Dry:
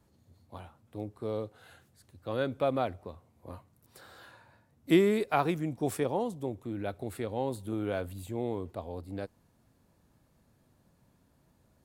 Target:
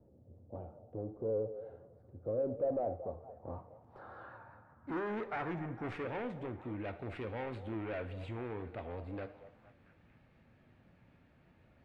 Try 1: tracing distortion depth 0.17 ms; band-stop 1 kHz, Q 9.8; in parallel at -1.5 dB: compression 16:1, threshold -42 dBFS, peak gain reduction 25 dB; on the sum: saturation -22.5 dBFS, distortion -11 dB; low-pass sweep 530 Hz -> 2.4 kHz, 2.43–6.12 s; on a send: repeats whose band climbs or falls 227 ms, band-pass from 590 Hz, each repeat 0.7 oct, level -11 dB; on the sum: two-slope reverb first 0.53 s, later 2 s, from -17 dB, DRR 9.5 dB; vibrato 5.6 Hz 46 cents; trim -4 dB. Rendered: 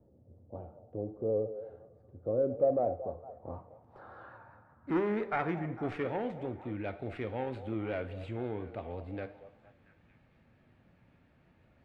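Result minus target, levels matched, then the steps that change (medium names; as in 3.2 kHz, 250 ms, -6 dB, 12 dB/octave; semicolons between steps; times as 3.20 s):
saturation: distortion -7 dB
change: saturation -32.5 dBFS, distortion -5 dB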